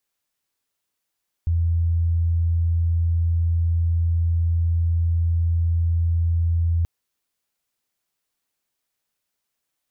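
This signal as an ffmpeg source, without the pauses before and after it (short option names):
-f lavfi -i "sine=f=84:d=5.38:r=44100,volume=1.06dB"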